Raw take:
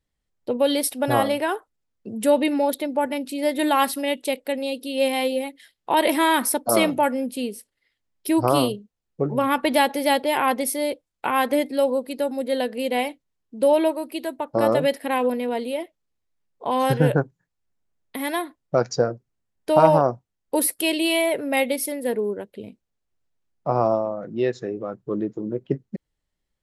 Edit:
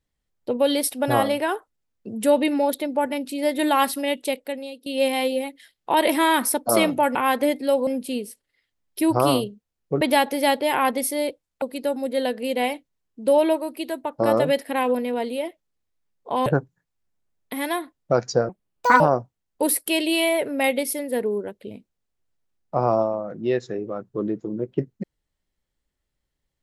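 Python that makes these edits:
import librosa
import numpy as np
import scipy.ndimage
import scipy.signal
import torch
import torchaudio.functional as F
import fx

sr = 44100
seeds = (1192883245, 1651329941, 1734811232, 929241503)

y = fx.edit(x, sr, fx.fade_out_to(start_s=4.27, length_s=0.59, floor_db=-18.0),
    fx.cut(start_s=9.29, length_s=0.35),
    fx.move(start_s=11.25, length_s=0.72, to_s=7.15),
    fx.cut(start_s=16.81, length_s=0.28),
    fx.speed_span(start_s=19.12, length_s=0.81, speed=1.58), tone=tone)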